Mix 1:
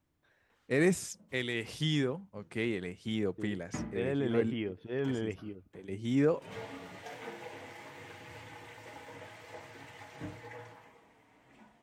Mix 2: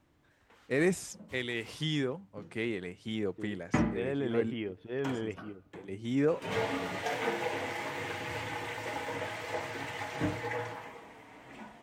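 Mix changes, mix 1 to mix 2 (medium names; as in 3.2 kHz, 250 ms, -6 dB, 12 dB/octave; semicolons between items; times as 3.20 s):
background +12.0 dB; master: add tone controls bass -3 dB, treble -2 dB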